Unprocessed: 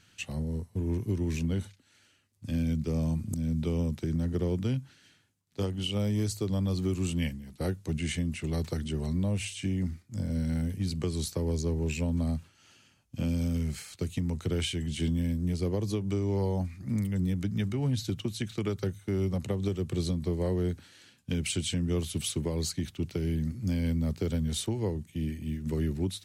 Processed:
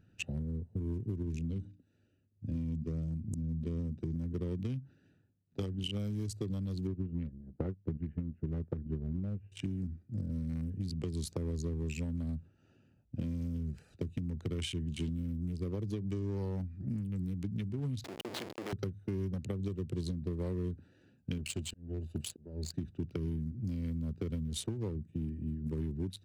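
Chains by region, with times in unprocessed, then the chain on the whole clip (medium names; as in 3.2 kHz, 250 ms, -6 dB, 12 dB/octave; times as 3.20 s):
1.23–4.16 s: low-pass 9.9 kHz + peaking EQ 1.2 kHz -6 dB 1.9 oct + hum notches 60/120/180/240/300 Hz
6.87–9.52 s: transient shaper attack +7 dB, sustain -9 dB + Gaussian low-pass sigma 5.1 samples
18.04–18.73 s: Schmitt trigger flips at -39.5 dBFS + high-pass 390 Hz + treble shelf 6.8 kHz -9 dB
21.38–22.74 s: rippled EQ curve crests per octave 1.4, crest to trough 7 dB + slow attack 413 ms + power-law waveshaper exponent 1.4
whole clip: local Wiener filter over 41 samples; dynamic bell 660 Hz, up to -5 dB, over -48 dBFS, Q 1.3; compression 6:1, threshold -36 dBFS; trim +2.5 dB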